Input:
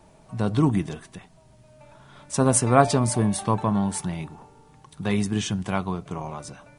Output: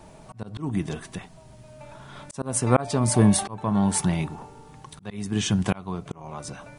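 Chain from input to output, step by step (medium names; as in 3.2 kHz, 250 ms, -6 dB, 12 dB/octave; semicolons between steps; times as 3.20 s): slow attack 523 ms; trim +6 dB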